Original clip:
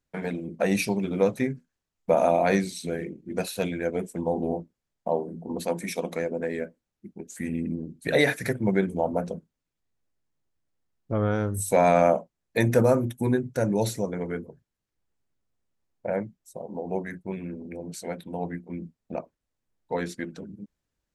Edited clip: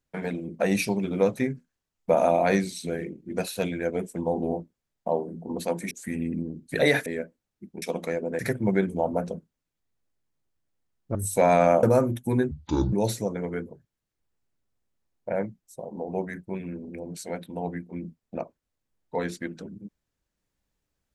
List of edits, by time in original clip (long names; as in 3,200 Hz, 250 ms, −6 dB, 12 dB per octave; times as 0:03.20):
0:05.91–0:06.48: swap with 0:07.24–0:08.39
0:11.15–0:11.50: remove
0:12.18–0:12.77: remove
0:13.45–0:13.70: play speed 60%